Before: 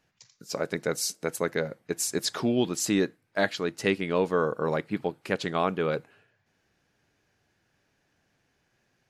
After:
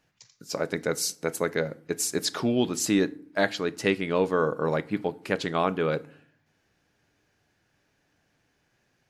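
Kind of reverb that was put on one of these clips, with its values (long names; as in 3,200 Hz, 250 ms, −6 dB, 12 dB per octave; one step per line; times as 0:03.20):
feedback delay network reverb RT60 0.53 s, low-frequency decay 1.55×, high-frequency decay 0.65×, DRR 16 dB
level +1 dB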